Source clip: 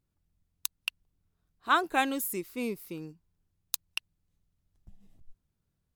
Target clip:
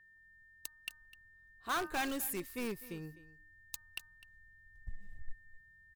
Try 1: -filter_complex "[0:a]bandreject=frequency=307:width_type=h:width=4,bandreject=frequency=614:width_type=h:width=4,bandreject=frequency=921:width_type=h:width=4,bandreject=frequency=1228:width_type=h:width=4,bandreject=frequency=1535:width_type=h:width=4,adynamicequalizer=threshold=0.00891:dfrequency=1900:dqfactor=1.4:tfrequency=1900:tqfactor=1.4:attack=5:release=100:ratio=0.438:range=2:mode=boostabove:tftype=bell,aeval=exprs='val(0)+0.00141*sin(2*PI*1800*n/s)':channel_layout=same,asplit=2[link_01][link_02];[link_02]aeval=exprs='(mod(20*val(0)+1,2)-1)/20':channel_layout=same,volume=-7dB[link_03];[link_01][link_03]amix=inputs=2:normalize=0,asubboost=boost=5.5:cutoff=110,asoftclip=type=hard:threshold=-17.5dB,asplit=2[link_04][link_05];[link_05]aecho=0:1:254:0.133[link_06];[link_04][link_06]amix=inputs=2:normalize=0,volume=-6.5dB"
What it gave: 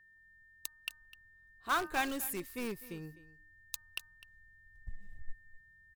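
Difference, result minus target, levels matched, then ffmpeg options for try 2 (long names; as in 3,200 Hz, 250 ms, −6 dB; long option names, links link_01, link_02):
hard clipping: distortion −7 dB
-filter_complex "[0:a]bandreject=frequency=307:width_type=h:width=4,bandreject=frequency=614:width_type=h:width=4,bandreject=frequency=921:width_type=h:width=4,bandreject=frequency=1228:width_type=h:width=4,bandreject=frequency=1535:width_type=h:width=4,adynamicequalizer=threshold=0.00891:dfrequency=1900:dqfactor=1.4:tfrequency=1900:tqfactor=1.4:attack=5:release=100:ratio=0.438:range=2:mode=boostabove:tftype=bell,aeval=exprs='val(0)+0.00141*sin(2*PI*1800*n/s)':channel_layout=same,asplit=2[link_01][link_02];[link_02]aeval=exprs='(mod(20*val(0)+1,2)-1)/20':channel_layout=same,volume=-7dB[link_03];[link_01][link_03]amix=inputs=2:normalize=0,asubboost=boost=5.5:cutoff=110,asoftclip=type=hard:threshold=-24dB,asplit=2[link_04][link_05];[link_05]aecho=0:1:254:0.133[link_06];[link_04][link_06]amix=inputs=2:normalize=0,volume=-6.5dB"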